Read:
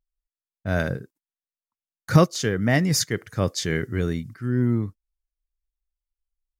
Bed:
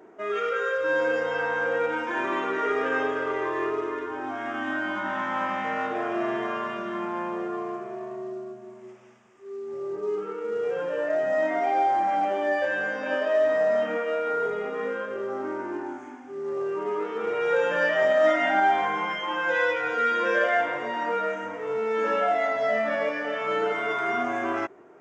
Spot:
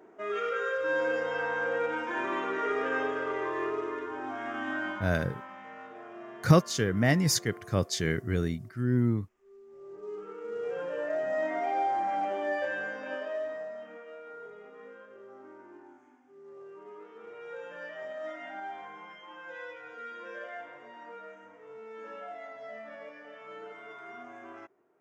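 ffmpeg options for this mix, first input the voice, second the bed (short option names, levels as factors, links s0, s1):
-filter_complex "[0:a]adelay=4350,volume=0.631[s0];[1:a]volume=2.24,afade=t=out:st=4.87:d=0.23:silence=0.223872,afade=t=in:st=9.71:d=1.09:silence=0.266073,afade=t=out:st=12.65:d=1.09:silence=0.223872[s1];[s0][s1]amix=inputs=2:normalize=0"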